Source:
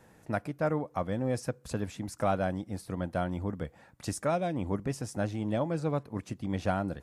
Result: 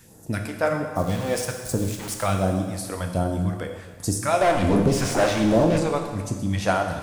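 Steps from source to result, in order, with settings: de-esser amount 85%; treble shelf 5.3 kHz +10 dB; 0.96–2.25 s: small samples zeroed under -39 dBFS; 4.41–5.78 s: overdrive pedal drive 34 dB, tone 1.1 kHz, clips at -18.5 dBFS; phase shifter stages 2, 1.3 Hz, lowest notch 120–2400 Hz; plate-style reverb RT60 1.5 s, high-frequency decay 1×, DRR 3 dB; trim +8 dB

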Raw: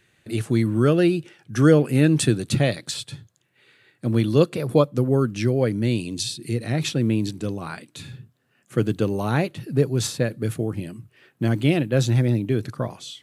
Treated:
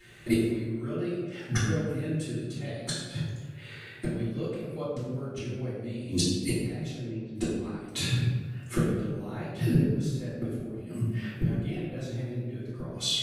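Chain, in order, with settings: 6.91–7.35 s: low-pass 2.2 kHz 12 dB/octave; inverted gate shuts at -21 dBFS, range -27 dB; reverberation RT60 1.6 s, pre-delay 3 ms, DRR -12 dB; trim -2.5 dB

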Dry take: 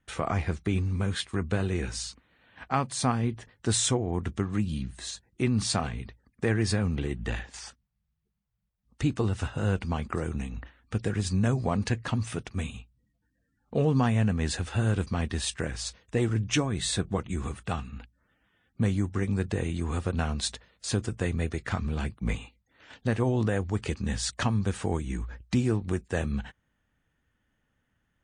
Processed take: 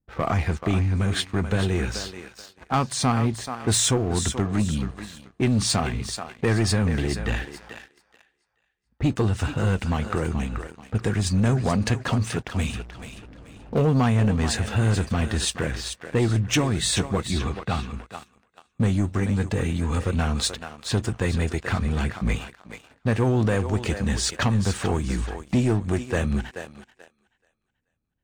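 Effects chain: 12.59–13.80 s: jump at every zero crossing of -40 dBFS; 19.20–20.01 s: comb of notches 360 Hz; level-controlled noise filter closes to 520 Hz, open at -26 dBFS; on a send: thinning echo 432 ms, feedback 33%, high-pass 470 Hz, level -9 dB; on the sum: waveshaping leveller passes 2; 17.31–17.94 s: resonant high shelf 5.9 kHz -6 dB, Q 1.5; trim -1 dB

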